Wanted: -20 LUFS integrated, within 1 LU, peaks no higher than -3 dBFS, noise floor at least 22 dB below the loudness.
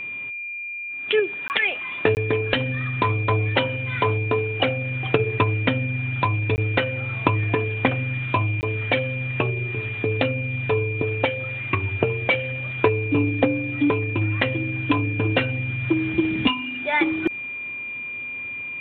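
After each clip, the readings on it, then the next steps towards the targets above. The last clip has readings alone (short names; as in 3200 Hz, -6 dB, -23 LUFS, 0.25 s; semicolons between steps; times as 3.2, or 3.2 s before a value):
dropouts 4; longest dropout 19 ms; steady tone 2400 Hz; tone level -29 dBFS; loudness -23.0 LUFS; peak -2.0 dBFS; loudness target -20.0 LUFS
-> interpolate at 1.48/2.15/6.56/8.61, 19 ms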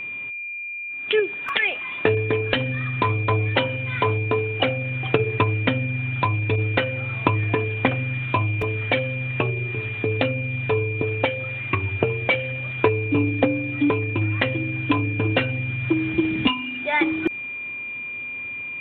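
dropouts 0; steady tone 2400 Hz; tone level -29 dBFS
-> notch 2400 Hz, Q 30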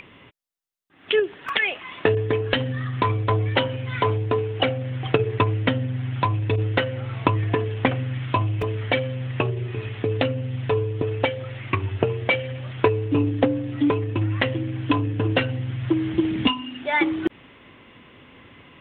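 steady tone none; loudness -24.0 LUFS; peak -2.5 dBFS; loudness target -20.0 LUFS
-> gain +4 dB; limiter -3 dBFS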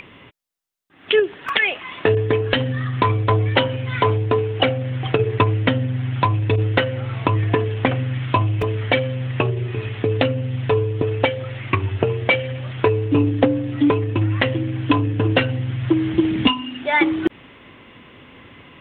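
loudness -20.5 LUFS; peak -3.0 dBFS; noise floor -46 dBFS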